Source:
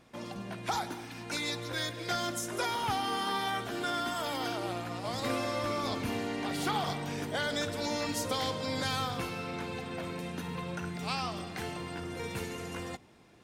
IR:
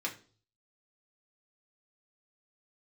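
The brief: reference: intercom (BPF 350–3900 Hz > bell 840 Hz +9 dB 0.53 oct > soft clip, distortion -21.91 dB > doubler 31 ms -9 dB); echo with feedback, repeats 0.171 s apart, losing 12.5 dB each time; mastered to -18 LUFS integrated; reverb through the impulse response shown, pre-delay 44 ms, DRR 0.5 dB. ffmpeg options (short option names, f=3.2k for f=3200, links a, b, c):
-filter_complex "[0:a]aecho=1:1:171|342|513:0.237|0.0569|0.0137,asplit=2[a][b];[1:a]atrim=start_sample=2205,adelay=44[c];[b][c]afir=irnorm=-1:irlink=0,volume=-4dB[d];[a][d]amix=inputs=2:normalize=0,highpass=350,lowpass=3.9k,equalizer=f=840:t=o:w=0.53:g=9,asoftclip=threshold=-18dB,asplit=2[e][f];[f]adelay=31,volume=-9dB[g];[e][g]amix=inputs=2:normalize=0,volume=13dB"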